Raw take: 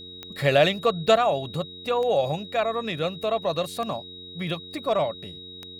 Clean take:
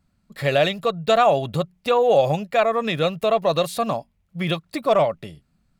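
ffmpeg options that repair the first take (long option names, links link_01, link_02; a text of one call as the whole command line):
ffmpeg -i in.wav -af "adeclick=threshold=4,bandreject=frequency=90.6:width_type=h:width=4,bandreject=frequency=181.2:width_type=h:width=4,bandreject=frequency=271.8:width_type=h:width=4,bandreject=frequency=362.4:width_type=h:width=4,bandreject=frequency=453:width_type=h:width=4,bandreject=frequency=3800:width=30,asetnsamples=nb_out_samples=441:pad=0,asendcmd='1.16 volume volume 6dB',volume=0dB" out.wav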